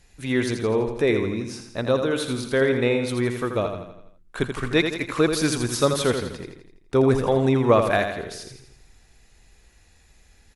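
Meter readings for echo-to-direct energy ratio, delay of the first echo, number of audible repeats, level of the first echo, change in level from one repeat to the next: -5.5 dB, 83 ms, 5, -7.0 dB, -6.0 dB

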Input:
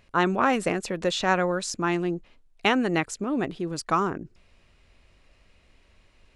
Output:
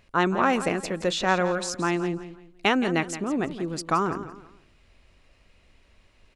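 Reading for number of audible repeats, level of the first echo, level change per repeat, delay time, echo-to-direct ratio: 3, -12.5 dB, -10.0 dB, 0.17 s, -12.0 dB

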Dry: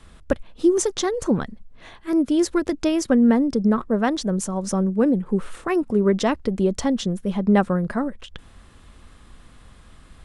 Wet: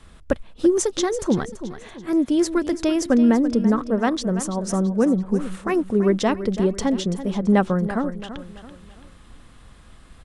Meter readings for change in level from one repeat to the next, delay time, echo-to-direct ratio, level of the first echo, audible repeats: -7.5 dB, 0.334 s, -11.5 dB, -12.5 dB, 3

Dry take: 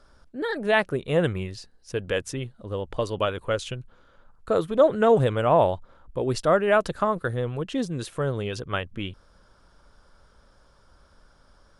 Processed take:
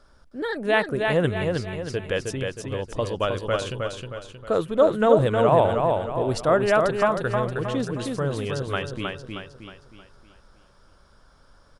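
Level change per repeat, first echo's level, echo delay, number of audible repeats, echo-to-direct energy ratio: -7.0 dB, -4.0 dB, 0.314 s, 5, -3.0 dB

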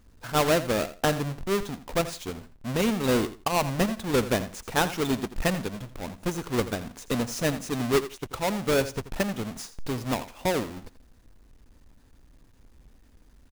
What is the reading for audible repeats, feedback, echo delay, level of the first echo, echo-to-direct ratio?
2, 19%, 84 ms, -14.0 dB, -14.0 dB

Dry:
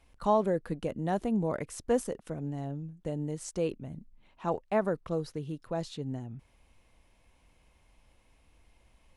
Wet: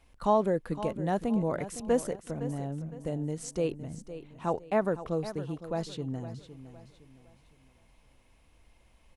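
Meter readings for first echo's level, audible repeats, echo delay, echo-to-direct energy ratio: -13.0 dB, 3, 0.511 s, -12.5 dB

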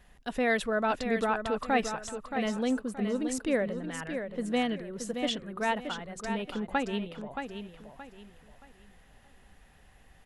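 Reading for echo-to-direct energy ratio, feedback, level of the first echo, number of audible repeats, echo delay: -7.0 dB, 30%, -7.5 dB, 3, 0.624 s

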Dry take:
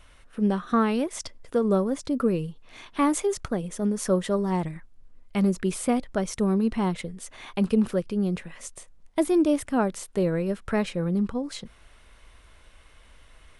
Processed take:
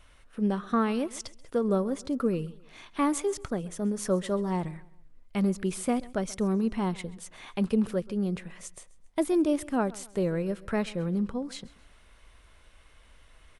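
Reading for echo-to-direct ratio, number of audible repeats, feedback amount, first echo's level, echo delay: -20.5 dB, 2, 38%, -21.0 dB, 0.133 s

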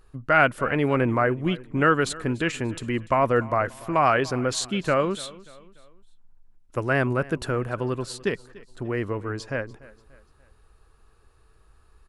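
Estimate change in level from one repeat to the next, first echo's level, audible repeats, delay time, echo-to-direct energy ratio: -7.0 dB, -20.5 dB, 3, 0.292 s, -19.5 dB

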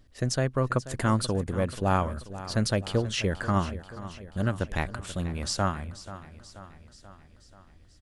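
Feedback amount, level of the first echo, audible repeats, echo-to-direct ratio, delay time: 59%, -15.0 dB, 5, -13.0 dB, 0.484 s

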